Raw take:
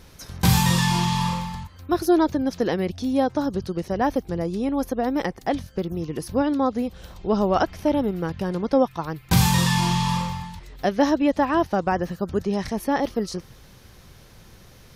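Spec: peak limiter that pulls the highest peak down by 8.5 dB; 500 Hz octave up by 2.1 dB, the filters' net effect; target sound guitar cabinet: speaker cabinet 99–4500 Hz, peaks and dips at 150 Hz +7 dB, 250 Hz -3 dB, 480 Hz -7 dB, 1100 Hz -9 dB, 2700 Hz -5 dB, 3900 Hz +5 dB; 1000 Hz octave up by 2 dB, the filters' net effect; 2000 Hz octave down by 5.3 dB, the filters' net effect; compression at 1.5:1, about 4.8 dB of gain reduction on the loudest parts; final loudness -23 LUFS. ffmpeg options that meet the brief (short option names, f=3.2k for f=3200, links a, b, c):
-af "equalizer=f=500:t=o:g=5.5,equalizer=f=1k:t=o:g=5,equalizer=f=2k:t=o:g=-7,acompressor=threshold=-23dB:ratio=1.5,alimiter=limit=-16.5dB:level=0:latency=1,highpass=99,equalizer=f=150:t=q:w=4:g=7,equalizer=f=250:t=q:w=4:g=-3,equalizer=f=480:t=q:w=4:g=-7,equalizer=f=1.1k:t=q:w=4:g=-9,equalizer=f=2.7k:t=q:w=4:g=-5,equalizer=f=3.9k:t=q:w=4:g=5,lowpass=f=4.5k:w=0.5412,lowpass=f=4.5k:w=1.3066,volume=5.5dB"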